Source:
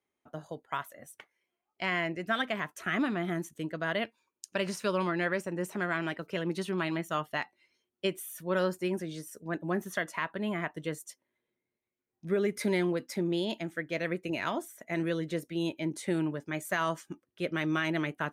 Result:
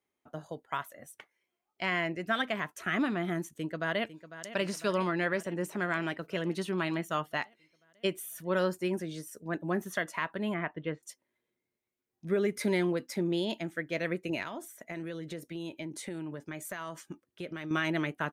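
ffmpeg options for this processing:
ffmpeg -i in.wav -filter_complex "[0:a]asplit=2[link_01][link_02];[link_02]afade=type=in:start_time=3.53:duration=0.01,afade=type=out:start_time=4.49:duration=0.01,aecho=0:1:500|1000|1500|2000|2500|3000|3500|4000|4500:0.211349|0.147944|0.103561|0.0724927|0.0507449|0.0355214|0.024865|0.0174055|0.0121838[link_03];[link_01][link_03]amix=inputs=2:normalize=0,asettb=1/sr,asplit=3[link_04][link_05][link_06];[link_04]atrim=end=10.544[link_07];[link_05]atrim=start=10.54:end=11.03,asetpts=PTS-STARTPTS,afade=type=in:duration=0.004:curve=qsin,afade=type=out:start_time=0.486:duration=0.004:curve=qsin,lowpass=frequency=3000:width=0.5412,lowpass=frequency=3000:width=1.3066[link_08];[link_06]atrim=start=11.026[link_09];[link_07][link_08]acrossfade=duration=0.004:curve1=hsin:curve2=qsin[link_10];[link_10][link_09]acrossfade=duration=0.004:curve1=qsin:curve2=hsin,asettb=1/sr,asplit=3[link_11][link_12][link_13];[link_11]atrim=end=14.424[link_14];[link_12]atrim=start=14.42:end=17.71,asetpts=PTS-STARTPTS,afade=type=in:duration=0.004:curve=qsin,afade=type=out:start_time=3.286:duration=0.004:curve=qsin,acompressor=threshold=-35dB:ratio=6:attack=3.2:release=140:knee=1:detection=peak[link_15];[link_13]atrim=start=17.706[link_16];[link_14][link_15]acrossfade=duration=0.004:curve1=hsin:curve2=qsin[link_17];[link_17][link_16]acrossfade=duration=0.004:curve1=qsin:curve2=hsin" out.wav

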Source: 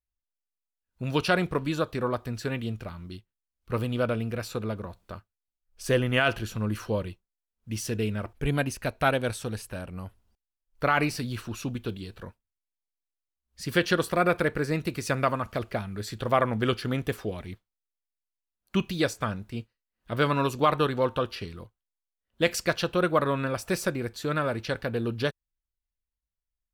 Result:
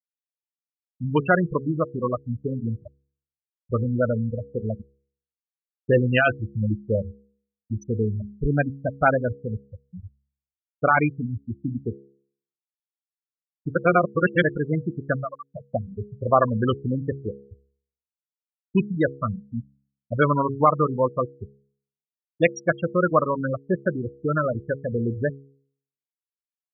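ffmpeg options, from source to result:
ffmpeg -i in.wav -filter_complex "[0:a]asettb=1/sr,asplit=3[link_01][link_02][link_03];[link_01]atrim=end=15.164[link_04];[link_02]atrim=start=15.16:end=15.72,asetpts=PTS-STARTPTS,afade=type=in:duration=0.004:curve=qsin,afade=type=out:start_time=0.556:duration=0.004:curve=qsin,acompressor=threshold=-33dB:ratio=2:attack=3.2:release=140:knee=1:detection=peak[link_05];[link_03]atrim=start=15.716[link_06];[link_04][link_05]acrossfade=duration=0.004:curve1=hsin:curve2=qsin[link_07];[link_07][link_06]acrossfade=duration=0.004:curve1=qsin:curve2=hsin,asplit=3[link_08][link_09][link_10];[link_08]atrim=end=13.752[link_11];[link_09]atrim=start=13.748:end=14.432,asetpts=PTS-STARTPTS,areverse[link_12];[link_10]atrim=start=14.428[link_13];[link_11][link_12]acrossfade=duration=0.004:curve1=hsin:curve2=hsin[link_14];[link_14][link_13]acrossfade=duration=0.004:curve1=hsin:curve2=hsin,afftfilt=real='re*gte(hypot(re,im),0.141)':imag='im*gte(hypot(re,im),0.141)':win_size=1024:overlap=0.75,bandreject=frequency=68.82:width_type=h:width=4,bandreject=frequency=137.64:width_type=h:width=4,bandreject=frequency=206.46:width_type=h:width=4,bandreject=frequency=275.28:width_type=h:width=4,bandreject=frequency=344.1:width_type=h:width=4,bandreject=frequency=412.92:width_type=h:width=4,bandreject=frequency=481.74:width_type=h:width=4,adynamicequalizer=threshold=0.00891:dfrequency=390:dqfactor=1.9:tfrequency=390:tqfactor=1.9:attack=5:release=100:ratio=0.375:range=2.5:mode=cutabove:tftype=bell,volume=6dB" out.wav

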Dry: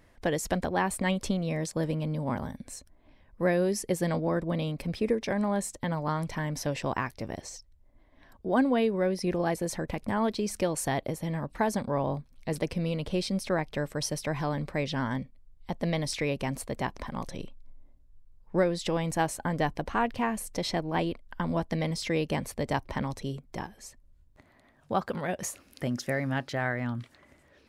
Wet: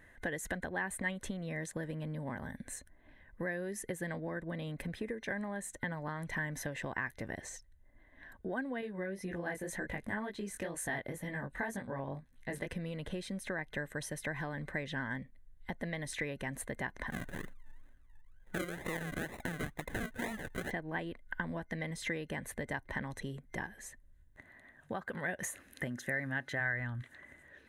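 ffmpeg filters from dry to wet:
ffmpeg -i in.wav -filter_complex "[0:a]asettb=1/sr,asplit=3[link_01][link_02][link_03];[link_01]atrim=end=8.814[link_04];[link_02]atrim=start=8.81:end=12.68,asetpts=PTS-STARTPTS,afade=type=in:duration=0.004:curve=qsin,afade=type=out:start_time=3.866:duration=0.004:curve=qsin,flanger=delay=15.5:depth=6.8:speed=2[link_05];[link_03]atrim=start=12.676[link_06];[link_04][link_05]acrossfade=duration=0.004:curve1=hsin:curve2=qsin[link_07];[link_07][link_06]acrossfade=duration=0.004:curve1=qsin:curve2=hsin,asettb=1/sr,asplit=3[link_08][link_09][link_10];[link_08]atrim=end=17.104[link_11];[link_09]atrim=start=17.1:end=20.71,asetpts=PTS-STARTPTS,afade=type=in:duration=0.004:curve=qsin,afade=type=out:start_time=3.606:duration=0.004:curve=qsin,acrusher=samples=39:mix=1:aa=0.000001:lfo=1:lforange=23.4:lforate=2.1[link_12];[link_10]atrim=start=20.706[link_13];[link_11][link_12]acrossfade=duration=0.004:curve1=hsin:curve2=qsin[link_14];[link_14][link_13]acrossfade=duration=0.004:curve1=qsin:curve2=hsin,asplit=3[link_15][link_16][link_17];[link_15]afade=type=out:start_time=26.59:duration=0.02[link_18];[link_16]asubboost=boost=9.5:cutoff=66,afade=type=in:start_time=26.59:duration=0.02,afade=type=out:start_time=27.01:duration=0.02[link_19];[link_17]afade=type=in:start_time=27.01:duration=0.02[link_20];[link_18][link_19][link_20]amix=inputs=3:normalize=0,acompressor=threshold=-34dB:ratio=6,superequalizer=11b=3.55:14b=0.355:16b=1.41,volume=-2.5dB" out.wav

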